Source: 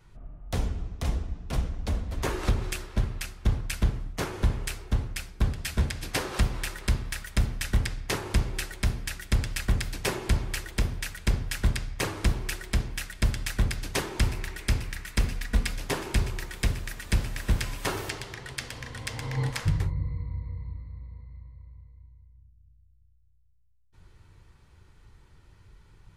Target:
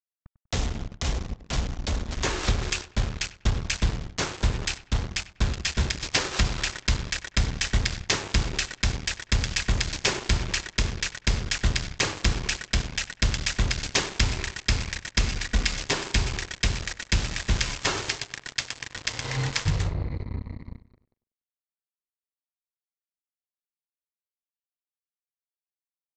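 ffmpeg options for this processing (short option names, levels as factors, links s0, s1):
-filter_complex "[0:a]highshelf=f=2000:g=10.5,aresample=16000,acrusher=bits=4:mix=0:aa=0.5,aresample=44100,asplit=2[s0][s1];[s1]adelay=97,lowpass=f=2100:p=1,volume=0.178,asplit=2[s2][s3];[s3]adelay=97,lowpass=f=2100:p=1,volume=0.38,asplit=2[s4][s5];[s5]adelay=97,lowpass=f=2100:p=1,volume=0.38[s6];[s0][s2][s4][s6]amix=inputs=4:normalize=0"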